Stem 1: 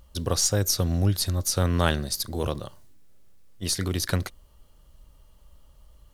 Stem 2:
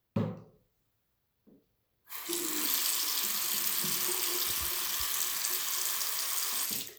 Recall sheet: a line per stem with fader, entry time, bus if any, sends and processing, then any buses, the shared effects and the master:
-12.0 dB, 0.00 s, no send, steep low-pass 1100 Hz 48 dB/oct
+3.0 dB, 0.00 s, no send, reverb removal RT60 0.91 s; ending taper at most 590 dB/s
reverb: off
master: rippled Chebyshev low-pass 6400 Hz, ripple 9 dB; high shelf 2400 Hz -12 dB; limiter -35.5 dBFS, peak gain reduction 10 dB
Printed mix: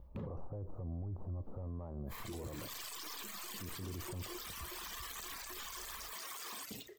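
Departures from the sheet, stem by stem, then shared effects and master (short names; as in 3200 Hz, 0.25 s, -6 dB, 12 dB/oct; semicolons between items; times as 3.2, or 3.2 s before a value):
stem 1 -12.0 dB -> -2.0 dB; master: missing rippled Chebyshev low-pass 6400 Hz, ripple 9 dB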